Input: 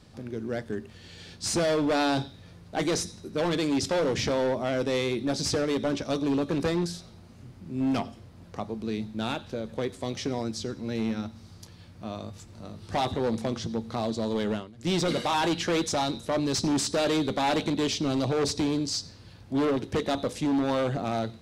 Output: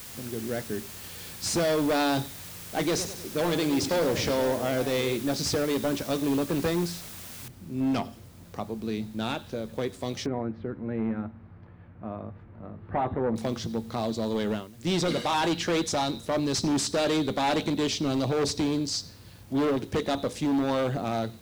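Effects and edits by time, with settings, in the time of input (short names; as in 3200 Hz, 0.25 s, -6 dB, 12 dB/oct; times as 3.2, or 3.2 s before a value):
2.87–5.17 warbling echo 0.102 s, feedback 50%, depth 174 cents, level -11 dB
7.48 noise floor step -43 dB -60 dB
10.26–13.36 LPF 1900 Hz 24 dB/oct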